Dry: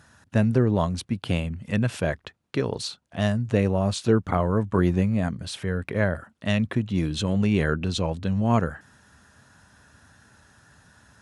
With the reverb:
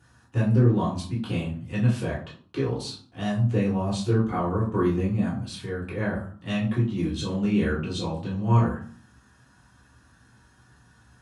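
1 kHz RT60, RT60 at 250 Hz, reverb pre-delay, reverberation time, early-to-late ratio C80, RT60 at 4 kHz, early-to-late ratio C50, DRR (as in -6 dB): 0.50 s, 0.75 s, 3 ms, 0.45 s, 11.0 dB, 0.30 s, 7.0 dB, -6.5 dB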